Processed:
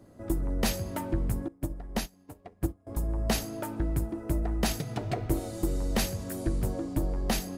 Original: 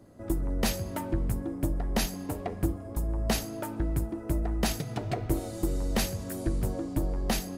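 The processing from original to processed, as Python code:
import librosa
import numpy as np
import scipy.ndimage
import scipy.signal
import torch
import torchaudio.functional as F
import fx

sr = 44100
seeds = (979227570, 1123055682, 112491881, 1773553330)

y = fx.upward_expand(x, sr, threshold_db=-38.0, expansion=2.5, at=(1.48, 2.87))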